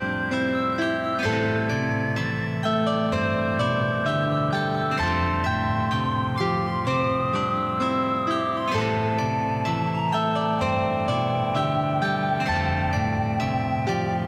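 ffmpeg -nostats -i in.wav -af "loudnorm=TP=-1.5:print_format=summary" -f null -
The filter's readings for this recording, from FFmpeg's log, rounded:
Input Integrated:    -24.0 LUFS
Input True Peak:     -11.9 dBTP
Input LRA:             0.6 LU
Input Threshold:     -34.0 LUFS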